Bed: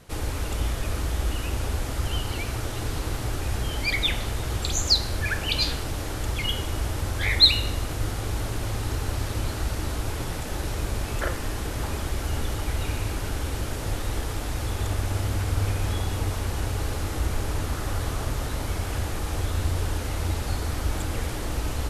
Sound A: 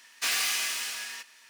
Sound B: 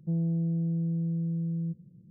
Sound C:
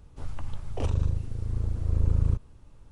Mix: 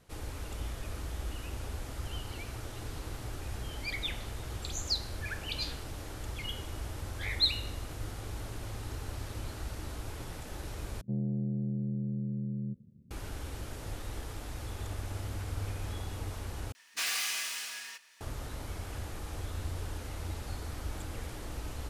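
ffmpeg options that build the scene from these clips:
-filter_complex "[0:a]volume=-11.5dB[a];[2:a]aeval=exprs='val(0)*sin(2*PI*38*n/s)':c=same[b];[1:a]acrossover=split=280[c][d];[d]adelay=30[e];[c][e]amix=inputs=2:normalize=0[f];[a]asplit=3[g][h][i];[g]atrim=end=11.014[j];[b]atrim=end=2.1,asetpts=PTS-STARTPTS,volume=-1.5dB[k];[h]atrim=start=13.106:end=16.724[l];[f]atrim=end=1.49,asetpts=PTS-STARTPTS,volume=-5dB[m];[i]atrim=start=18.206[n];[j][k]acrossfade=d=0.004:c1=hsin:c2=hsin[o];[o][l]acrossfade=d=0.004:c1=hsin:c2=hsin[p];[p][m]acrossfade=d=0.004:c1=hsin:c2=hsin[q];[q][n]acrossfade=d=0.004:c1=hsin:c2=hsin"

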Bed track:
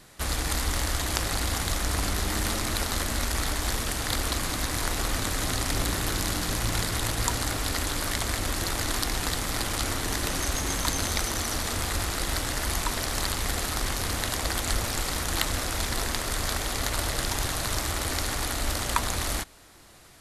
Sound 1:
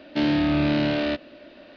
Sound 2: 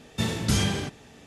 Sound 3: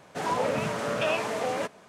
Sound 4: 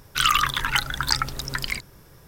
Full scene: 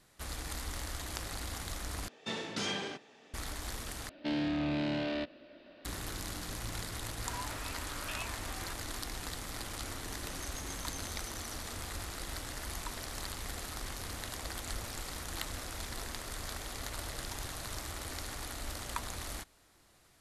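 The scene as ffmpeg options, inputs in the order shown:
-filter_complex "[0:a]volume=-12.5dB[a];[2:a]highpass=330,lowpass=5.3k[b];[1:a]asoftclip=type=tanh:threshold=-18.5dB[c];[3:a]highpass=f=930:w=0.5412,highpass=f=930:w=1.3066[d];[a]asplit=3[e][f][g];[e]atrim=end=2.084[h];[b]atrim=end=1.26,asetpts=PTS-STARTPTS,volume=-6dB[i];[f]atrim=start=3.336:end=4.094[j];[c]atrim=end=1.76,asetpts=PTS-STARTPTS,volume=-9dB[k];[g]atrim=start=5.846[l];[d]atrim=end=1.88,asetpts=PTS-STARTPTS,volume=-11.5dB,afade=t=in:d=0.004:c=hsin,afade=t=out:st=1.876:d=0.004:c=hsin,adelay=7070[m];[h][i]acrossfade=d=0.004:c1=hsin:c2=hsin[n];[n][j]acrossfade=d=0.004:c1=hsin:c2=hsin[o];[o][k]acrossfade=d=0.004:c1=hsin:c2=hsin[p];[p][l]acrossfade=d=0.004:c1=hsin:c2=hsin[q];[q][m]amix=inputs=2:normalize=0"

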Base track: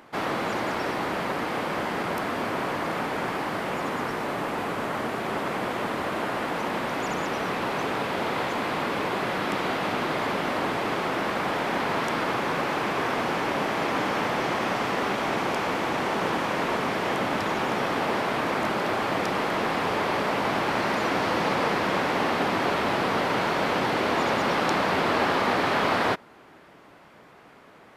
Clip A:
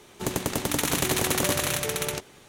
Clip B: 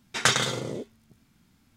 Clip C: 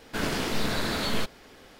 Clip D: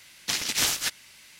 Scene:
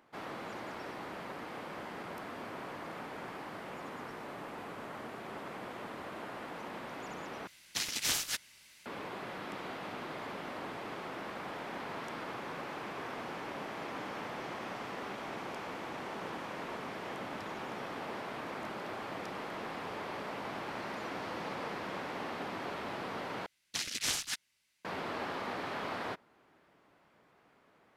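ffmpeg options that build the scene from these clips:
-filter_complex "[4:a]asplit=2[a][b];[0:a]volume=-15dB[c];[b]afwtdn=0.0141[d];[c]asplit=3[e][f][g];[e]atrim=end=7.474[h];[a]atrim=end=1.39,asetpts=PTS-STARTPTS,volume=-7.5dB[i];[f]atrim=start=8.856:end=23.464[j];[d]atrim=end=1.39,asetpts=PTS-STARTPTS,volume=-8.5dB[k];[g]atrim=start=24.846[l];[h][i]acrossfade=d=0.004:c1=hsin:c2=hsin[m];[m][j]acrossfade=d=0.004:c1=hsin:c2=hsin[n];[n][k]acrossfade=d=0.004:c1=hsin:c2=hsin[o];[o][l]acrossfade=d=0.004:c1=hsin:c2=hsin"

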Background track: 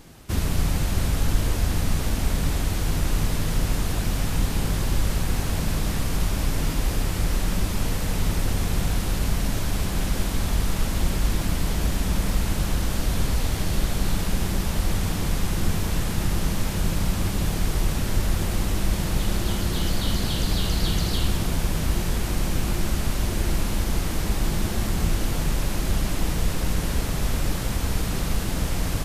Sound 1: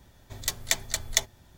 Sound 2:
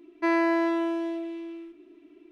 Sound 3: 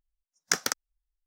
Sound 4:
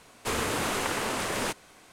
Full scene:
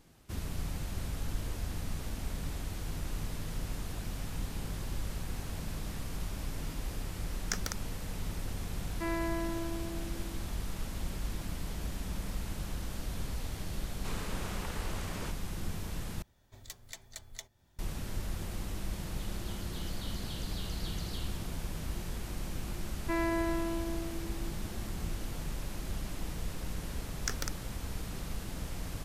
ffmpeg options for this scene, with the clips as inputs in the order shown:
-filter_complex "[3:a]asplit=2[a][b];[2:a]asplit=2[c][d];[0:a]volume=-14dB[e];[4:a]lowpass=9k[f];[1:a]alimiter=limit=-14.5dB:level=0:latency=1:release=263[g];[e]asplit=2[h][i];[h]atrim=end=16.224[j];[g]atrim=end=1.57,asetpts=PTS-STARTPTS,volume=-12dB[k];[i]atrim=start=17.786[l];[a]atrim=end=1.26,asetpts=PTS-STARTPTS,volume=-10dB,afade=t=in:d=0.004:c=hsin,afade=t=out:st=1.256:d=0.004:c=hsin,adelay=7000[m];[c]atrim=end=2.31,asetpts=PTS-STARTPTS,volume=-11.5dB,afade=t=in:d=0.004:c=hsin,afade=t=out:st=2.306:d=0.004:c=hsin,adelay=8780[n];[f]atrim=end=1.92,asetpts=PTS-STARTPTS,volume=-14dB,afade=t=in:d=0.004:c=hsin,afade=t=out:st=1.916:d=0.004:c=hsin,adelay=13790[o];[d]atrim=end=2.31,asetpts=PTS-STARTPTS,volume=-8.5dB,afade=t=in:d=0.004:c=hsin,afade=t=out:st=2.306:d=0.004:c=hsin,adelay=22860[p];[b]atrim=end=1.26,asetpts=PTS-STARTPTS,volume=-10.5dB,afade=t=in:d=0.004:c=hsin,afade=t=out:st=1.256:d=0.004:c=hsin,adelay=26760[q];[j][k]acrossfade=d=0.004:c1=hsin:c2=hsin[r];[r][l]acrossfade=d=0.004:c1=hsin:c2=hsin[s];[s][m][n][o][p][q]amix=inputs=6:normalize=0"

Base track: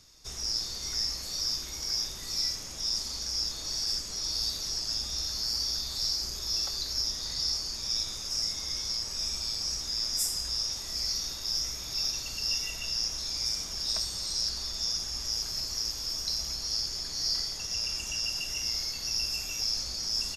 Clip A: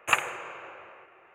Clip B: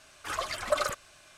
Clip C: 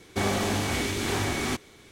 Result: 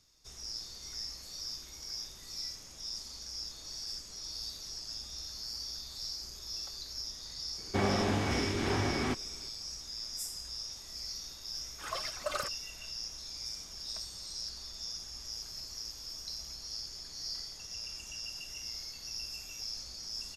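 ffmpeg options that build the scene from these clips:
-filter_complex "[0:a]volume=-10dB[a];[3:a]aemphasis=mode=reproduction:type=75fm[b];[2:a]tremolo=f=2.3:d=0.6[c];[b]atrim=end=1.91,asetpts=PTS-STARTPTS,volume=-3.5dB,afade=t=in:d=0.004:c=hsin,afade=t=out:st=1.906:d=0.004:c=hsin,adelay=7580[d];[c]atrim=end=1.37,asetpts=PTS-STARTPTS,volume=-5dB,afade=t=in:d=0.004:c=hsin,afade=t=out:st=1.366:d=0.004:c=hsin,adelay=508914S[e];[a][d][e]amix=inputs=3:normalize=0"

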